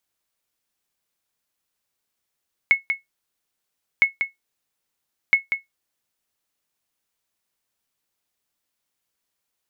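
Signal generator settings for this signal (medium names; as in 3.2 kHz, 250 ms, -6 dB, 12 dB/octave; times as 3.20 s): sonar ping 2.19 kHz, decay 0.15 s, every 1.31 s, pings 3, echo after 0.19 s, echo -7.5 dB -6.5 dBFS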